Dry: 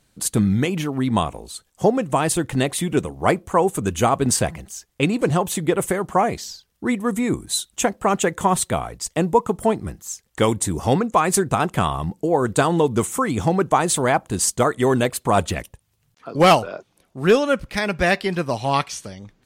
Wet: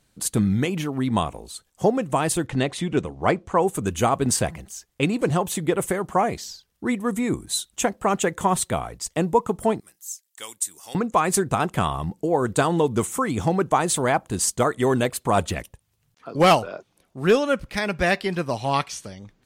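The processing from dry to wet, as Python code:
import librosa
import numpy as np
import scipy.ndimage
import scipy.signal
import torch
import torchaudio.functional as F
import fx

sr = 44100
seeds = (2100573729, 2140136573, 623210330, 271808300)

y = fx.lowpass(x, sr, hz=5900.0, slope=12, at=(2.46, 3.59), fade=0.02)
y = fx.differentiator(y, sr, at=(9.8, 10.95))
y = y * librosa.db_to_amplitude(-2.5)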